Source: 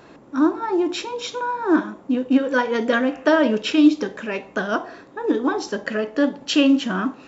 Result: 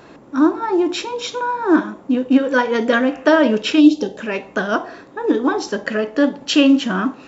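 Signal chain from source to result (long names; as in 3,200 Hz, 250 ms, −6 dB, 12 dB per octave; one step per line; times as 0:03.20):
gain on a spectral selection 0:03.80–0:04.20, 920–2,600 Hz −12 dB
level +3.5 dB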